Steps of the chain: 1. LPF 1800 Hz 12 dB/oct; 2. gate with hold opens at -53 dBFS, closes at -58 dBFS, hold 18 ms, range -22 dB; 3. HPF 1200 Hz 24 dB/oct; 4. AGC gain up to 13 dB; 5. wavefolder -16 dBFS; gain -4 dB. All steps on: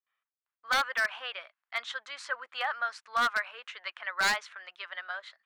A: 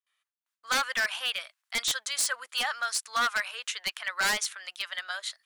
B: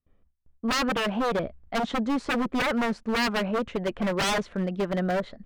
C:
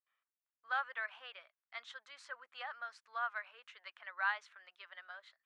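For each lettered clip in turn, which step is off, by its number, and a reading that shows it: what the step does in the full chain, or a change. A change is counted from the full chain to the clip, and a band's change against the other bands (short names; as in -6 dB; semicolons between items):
1, crest factor change -2.0 dB; 3, 250 Hz band +25.5 dB; 4, crest factor change +8.5 dB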